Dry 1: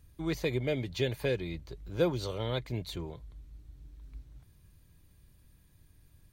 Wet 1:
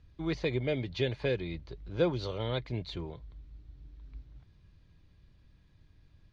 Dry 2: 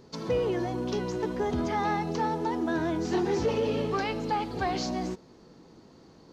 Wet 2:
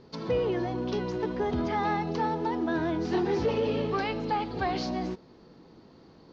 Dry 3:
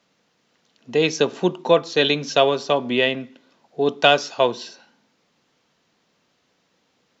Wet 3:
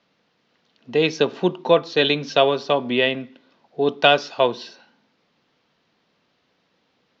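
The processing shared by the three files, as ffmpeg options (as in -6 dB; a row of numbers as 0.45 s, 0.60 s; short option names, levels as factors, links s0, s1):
-af "lowpass=f=5000:w=0.5412,lowpass=f=5000:w=1.3066"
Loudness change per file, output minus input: 0.0 LU, 0.0 LU, 0.0 LU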